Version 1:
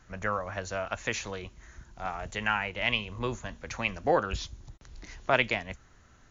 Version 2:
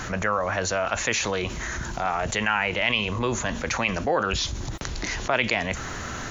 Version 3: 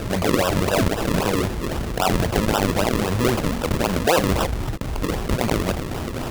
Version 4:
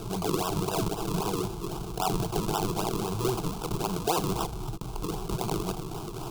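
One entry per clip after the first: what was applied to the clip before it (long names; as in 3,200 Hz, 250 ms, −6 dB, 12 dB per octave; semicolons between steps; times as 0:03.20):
low-shelf EQ 91 Hz −11 dB; envelope flattener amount 70%
brickwall limiter −13.5 dBFS, peak gain reduction 6.5 dB; sample-and-hold swept by an LFO 40×, swing 100% 3.8 Hz; level +6 dB
phaser with its sweep stopped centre 370 Hz, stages 8; level −5.5 dB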